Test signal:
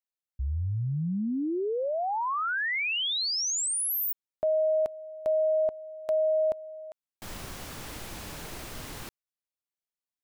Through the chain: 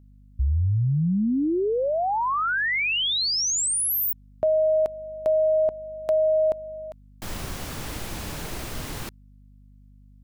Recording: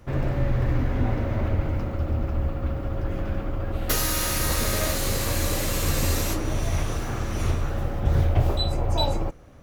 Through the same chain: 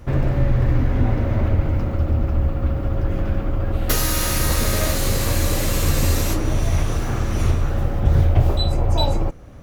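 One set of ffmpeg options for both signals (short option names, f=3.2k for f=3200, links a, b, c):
-filter_complex "[0:a]lowshelf=f=270:g=4,asplit=2[a][b];[b]acompressor=threshold=-26dB:ratio=6:attack=57:release=497:knee=6,volume=-1.5dB[c];[a][c]amix=inputs=2:normalize=0,aeval=exprs='val(0)+0.00316*(sin(2*PI*50*n/s)+sin(2*PI*2*50*n/s)/2+sin(2*PI*3*50*n/s)/3+sin(2*PI*4*50*n/s)/4+sin(2*PI*5*50*n/s)/5)':c=same"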